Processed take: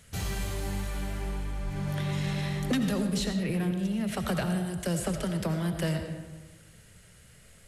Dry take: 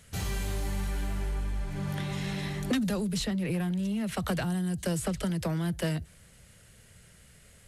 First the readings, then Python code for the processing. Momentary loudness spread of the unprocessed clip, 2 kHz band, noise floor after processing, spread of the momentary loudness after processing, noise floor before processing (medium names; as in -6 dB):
5 LU, +1.0 dB, -55 dBFS, 7 LU, -57 dBFS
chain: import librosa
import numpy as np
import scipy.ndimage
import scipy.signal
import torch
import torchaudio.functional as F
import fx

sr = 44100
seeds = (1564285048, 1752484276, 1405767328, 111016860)

y = fx.rev_freeverb(x, sr, rt60_s=1.4, hf_ratio=0.55, predelay_ms=45, drr_db=5.5)